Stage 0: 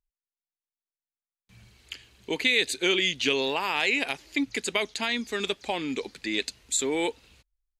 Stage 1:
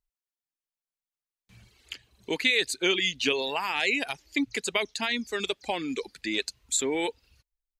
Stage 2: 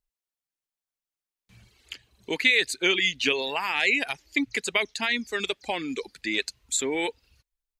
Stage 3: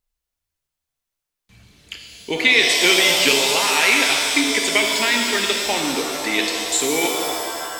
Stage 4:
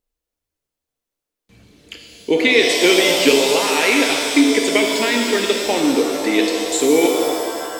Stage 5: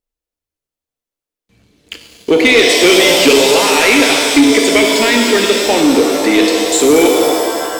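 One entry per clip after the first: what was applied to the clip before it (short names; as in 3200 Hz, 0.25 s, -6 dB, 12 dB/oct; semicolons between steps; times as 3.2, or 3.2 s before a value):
reverb removal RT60 0.93 s
dynamic EQ 2000 Hz, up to +5 dB, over -40 dBFS, Q 1.6
shimmer reverb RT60 2.1 s, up +7 st, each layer -2 dB, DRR 1.5 dB; gain +5 dB
small resonant body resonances 300/460 Hz, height 11 dB, ringing for 20 ms; gain -2 dB
sample leveller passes 2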